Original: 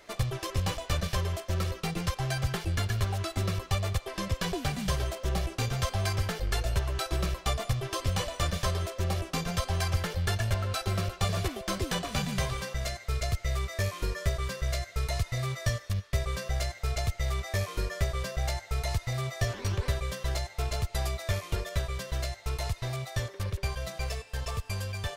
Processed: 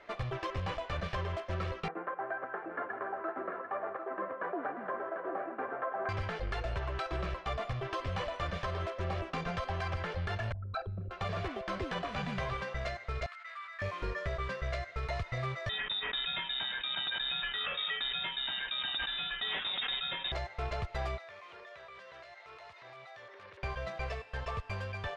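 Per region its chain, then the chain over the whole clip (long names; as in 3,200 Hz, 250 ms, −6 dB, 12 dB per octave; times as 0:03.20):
0:01.88–0:06.09: delay that plays each chunk backwards 111 ms, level −11 dB + Chebyshev band-pass filter 280–1,600 Hz, order 3 + single-tap delay 744 ms −8 dB
0:10.52–0:11.11: spectral envelope exaggerated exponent 3 + parametric band 1,900 Hz +5 dB 0.32 octaves + tuned comb filter 80 Hz, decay 0.72 s, mix 40%
0:13.26–0:13.82: four-pole ladder high-pass 1,100 Hz, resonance 45% + parametric band 6,000 Hz −5.5 dB 0.37 octaves + level that may fall only so fast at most 38 dB per second
0:15.69–0:20.32: single-tap delay 549 ms −19 dB + voice inversion scrambler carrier 3,700 Hz + level that may fall only so fast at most 64 dB per second
0:21.18–0:23.63: meter weighting curve A + downward compressor 10 to 1, threshold −45 dBFS + transient designer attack −9 dB, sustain 0 dB
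whole clip: low-pass filter 2,100 Hz 12 dB per octave; low-shelf EQ 380 Hz −9.5 dB; brickwall limiter −29 dBFS; level +3 dB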